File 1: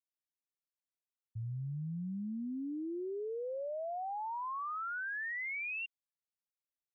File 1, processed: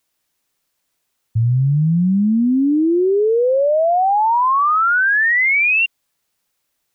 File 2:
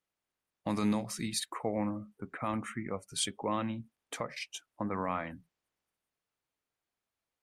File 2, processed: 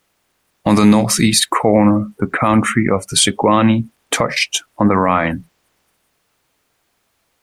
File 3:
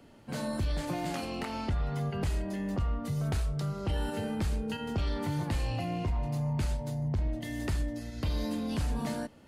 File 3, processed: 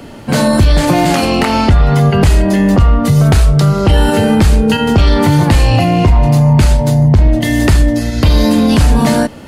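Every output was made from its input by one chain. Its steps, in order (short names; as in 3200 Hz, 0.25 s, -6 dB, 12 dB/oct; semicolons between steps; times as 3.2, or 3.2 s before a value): maximiser +25 dB; gain -1 dB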